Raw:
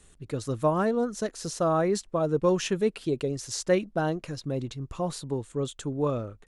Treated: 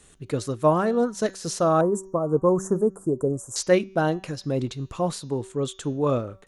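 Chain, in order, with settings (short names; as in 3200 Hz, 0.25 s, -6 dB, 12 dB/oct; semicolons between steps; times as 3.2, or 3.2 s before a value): low shelf 63 Hz -10 dB; de-hum 191.1 Hz, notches 36; 1.81–3.56 elliptic band-stop 1200–7600 Hz, stop band 50 dB; noise-modulated level, depth 60%; gain +7.5 dB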